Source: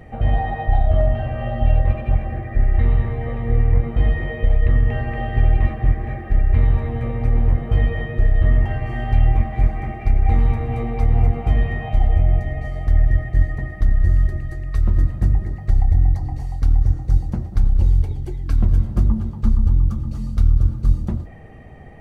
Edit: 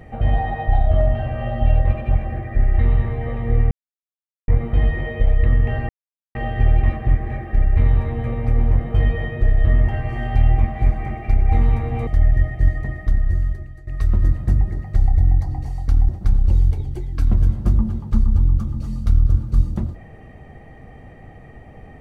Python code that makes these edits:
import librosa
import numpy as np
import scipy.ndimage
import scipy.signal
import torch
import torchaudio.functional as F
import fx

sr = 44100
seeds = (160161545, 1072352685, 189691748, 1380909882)

y = fx.edit(x, sr, fx.insert_silence(at_s=3.71, length_s=0.77),
    fx.insert_silence(at_s=5.12, length_s=0.46),
    fx.cut(start_s=10.84, length_s=1.97),
    fx.fade_out_to(start_s=13.71, length_s=0.9, floor_db=-15.0),
    fx.cut(start_s=16.83, length_s=0.57), tone=tone)